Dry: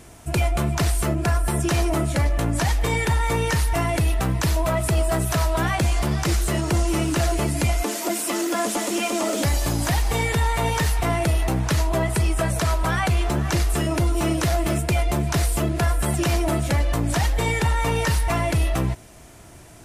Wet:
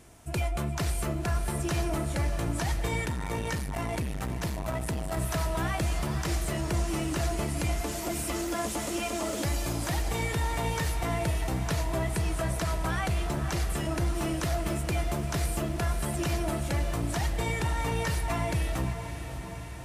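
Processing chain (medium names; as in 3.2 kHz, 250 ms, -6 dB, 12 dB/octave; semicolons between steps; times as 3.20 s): on a send: echo that smears into a reverb 593 ms, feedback 65%, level -10 dB; 3.05–5.17 s: on the sum: transformer saturation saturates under 270 Hz; trim -8.5 dB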